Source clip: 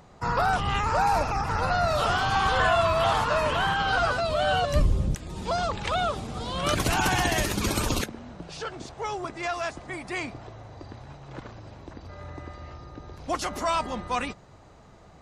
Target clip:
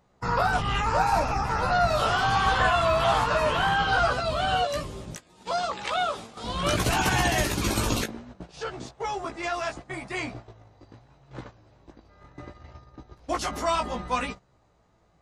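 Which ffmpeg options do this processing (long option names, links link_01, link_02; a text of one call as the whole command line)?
ffmpeg -i in.wav -filter_complex "[0:a]asettb=1/sr,asplit=3[link_01][link_02][link_03];[link_01]atrim=end=4.624[link_04];[link_02]atrim=start=4.62:end=6.44,asetpts=PTS-STARTPTS,afade=type=in:duration=0.004:curve=qsin,afade=type=out:start_time=1.816:duration=0.004:curve=qsin,highpass=frequency=520:poles=1[link_05];[link_03]atrim=start=6.436[link_06];[link_04][link_05]acrossfade=duration=0.004:curve1=hsin:curve2=qsin[link_07];[link_07][link_06]acrossfade=duration=0.004:curve1=qsin:curve2=hsin,flanger=delay=15.5:depth=2.6:speed=0.7,agate=range=-13dB:threshold=-42dB:ratio=16:detection=peak,volume=3.5dB" out.wav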